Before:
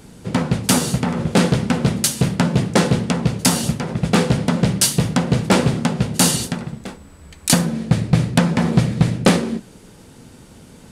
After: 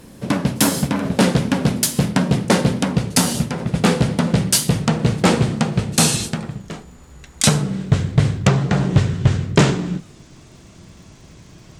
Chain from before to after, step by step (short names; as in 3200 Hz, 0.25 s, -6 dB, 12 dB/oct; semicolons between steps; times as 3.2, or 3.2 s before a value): speed glide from 115% -> 70%; crackle 250/s -47 dBFS; record warp 33 1/3 rpm, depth 100 cents